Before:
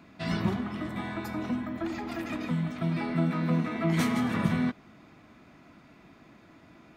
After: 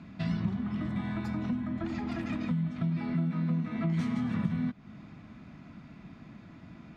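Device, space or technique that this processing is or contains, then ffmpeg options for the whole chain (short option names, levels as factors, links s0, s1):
jukebox: -af "lowpass=6200,lowshelf=f=270:t=q:w=1.5:g=8,acompressor=threshold=0.0282:ratio=3"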